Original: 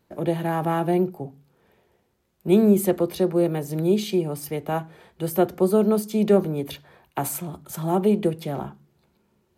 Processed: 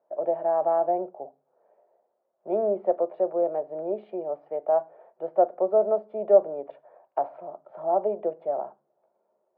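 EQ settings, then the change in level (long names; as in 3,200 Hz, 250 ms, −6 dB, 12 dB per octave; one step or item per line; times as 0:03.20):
high-pass with resonance 620 Hz, resonance Q 5.9
low-pass filter 1,000 Hz 12 dB per octave
high-frequency loss of the air 380 metres
−4.5 dB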